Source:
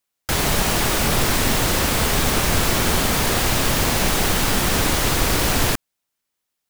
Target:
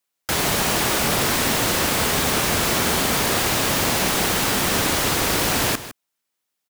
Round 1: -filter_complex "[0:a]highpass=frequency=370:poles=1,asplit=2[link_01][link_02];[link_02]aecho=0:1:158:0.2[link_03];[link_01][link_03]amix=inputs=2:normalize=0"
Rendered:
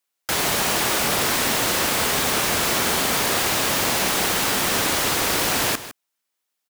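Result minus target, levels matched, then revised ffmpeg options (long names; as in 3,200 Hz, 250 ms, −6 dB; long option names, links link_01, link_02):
125 Hz band −5.0 dB
-filter_complex "[0:a]highpass=frequency=160:poles=1,asplit=2[link_01][link_02];[link_02]aecho=0:1:158:0.2[link_03];[link_01][link_03]amix=inputs=2:normalize=0"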